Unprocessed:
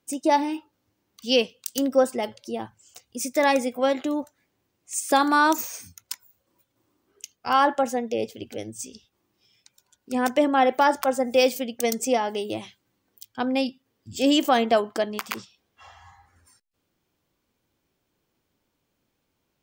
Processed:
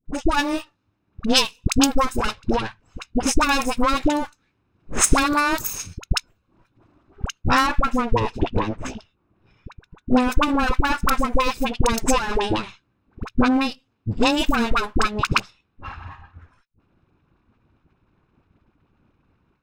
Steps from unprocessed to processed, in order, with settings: minimum comb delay 0.78 ms; low-pass opened by the level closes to 2000 Hz, open at -23.5 dBFS; AGC gain up to 12.5 dB; low shelf 110 Hz +6 dB; compressor 4:1, threshold -18 dBFS, peak gain reduction 9.5 dB; transient shaper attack +8 dB, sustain -7 dB; high shelf 4300 Hz +4.5 dB, from 7.61 s -8 dB, from 10.12 s -3 dB; dispersion highs, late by 58 ms, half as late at 700 Hz

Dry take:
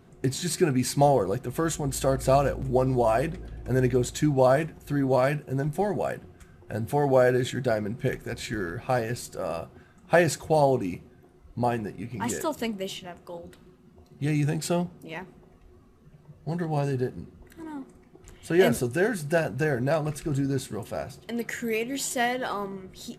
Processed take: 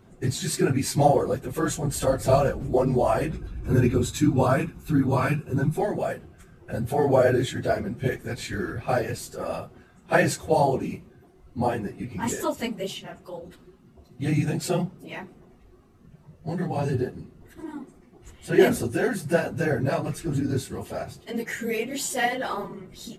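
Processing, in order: phase scrambler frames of 50 ms; 3.32–5.8 comb 0.8 ms, depth 55%; gain +1 dB

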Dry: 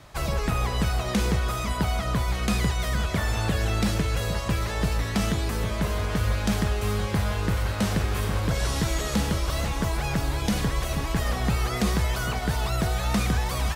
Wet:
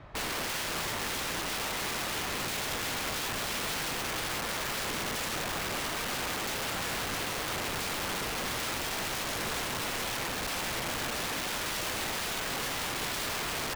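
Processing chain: LPF 2300 Hz 12 dB/oct; wrapped overs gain 29 dB

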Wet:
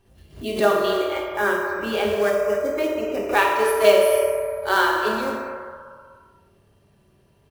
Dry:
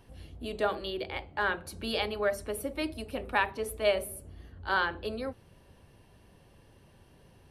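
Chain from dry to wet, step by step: 0.94–3.24 air absorption 320 m; short-mantissa float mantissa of 2-bit; speakerphone echo 0.26 s, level -12 dB; reverb RT60 2.4 s, pre-delay 3 ms, DRR -2.5 dB; spectral noise reduction 13 dB; backwards sustainer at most 150 dB/s; gain +6.5 dB

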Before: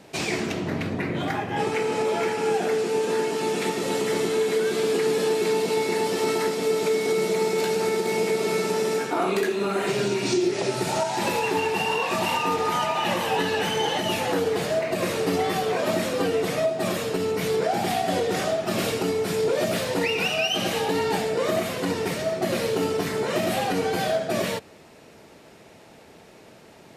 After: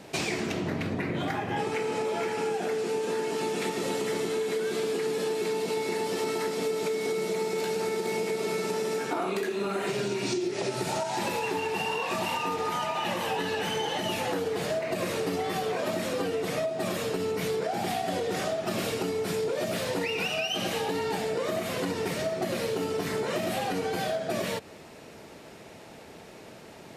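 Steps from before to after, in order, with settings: compressor, threshold -29 dBFS, peak gain reduction 10.5 dB; gain +2 dB

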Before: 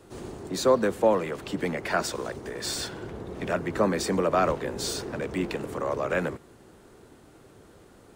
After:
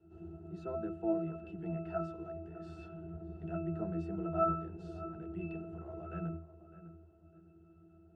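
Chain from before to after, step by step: octave resonator E, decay 0.45 s; darkening echo 0.605 s, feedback 29%, low-pass 1900 Hz, level -14 dB; gain +5.5 dB

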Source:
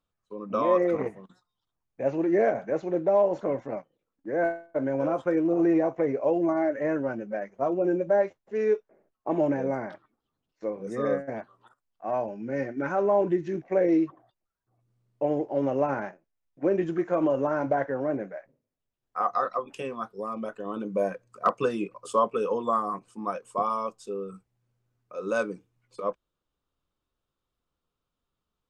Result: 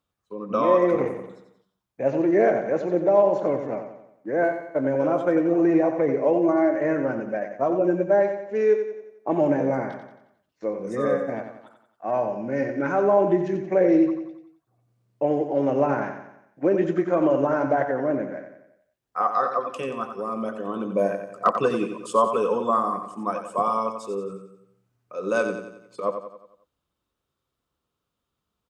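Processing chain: HPF 55 Hz; feedback echo 90 ms, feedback 48%, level -8 dB; gain +3.5 dB

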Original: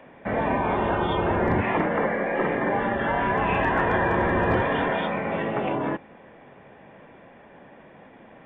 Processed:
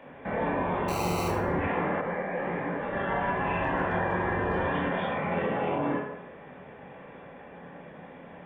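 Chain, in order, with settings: limiter -23 dBFS, peak gain reduction 9.5 dB; 0.88–1.28 sample-rate reducer 1700 Hz, jitter 0%; reverb RT60 0.95 s, pre-delay 19 ms, DRR -2 dB; 2.01–2.93 detuned doubles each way 57 cents; gain -2 dB

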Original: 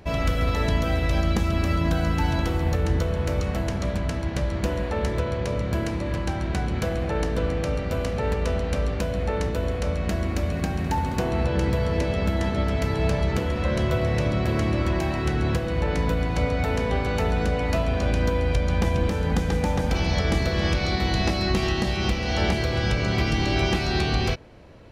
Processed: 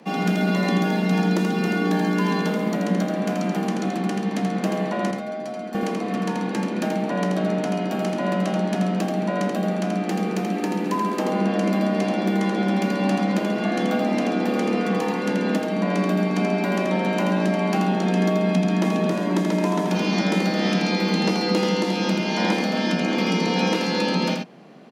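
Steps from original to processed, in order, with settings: frequency shift +130 Hz; 5.11–5.75 metallic resonator 73 Hz, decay 0.24 s, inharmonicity 0.002; on a send: echo 82 ms -5 dB

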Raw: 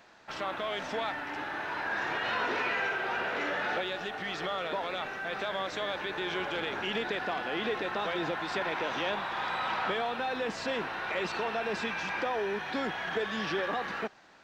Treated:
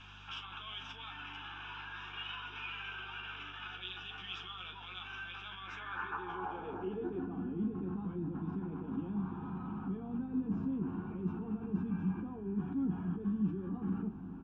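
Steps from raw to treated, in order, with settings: tilt -4 dB/oct; negative-ratio compressor -36 dBFS, ratio -1; limiter -35.5 dBFS, peak gain reduction 14.5 dB; band-pass sweep 3200 Hz -> 220 Hz, 5.42–7.43; hum 50 Hz, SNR 19 dB; fixed phaser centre 2900 Hz, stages 8; early reflections 11 ms -5 dB, 38 ms -10.5 dB; gain +14.5 dB

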